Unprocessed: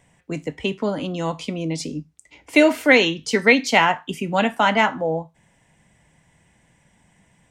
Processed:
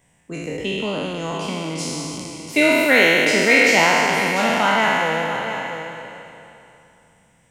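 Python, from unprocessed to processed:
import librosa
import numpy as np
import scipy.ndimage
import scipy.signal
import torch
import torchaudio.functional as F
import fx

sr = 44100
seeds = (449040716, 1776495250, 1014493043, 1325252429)

p1 = fx.spec_trails(x, sr, decay_s=2.85)
p2 = fx.high_shelf(p1, sr, hz=9800.0, db=10.5)
p3 = p2 + fx.echo_single(p2, sr, ms=689, db=-10.5, dry=0)
y = F.gain(torch.from_numpy(p3), -5.0).numpy()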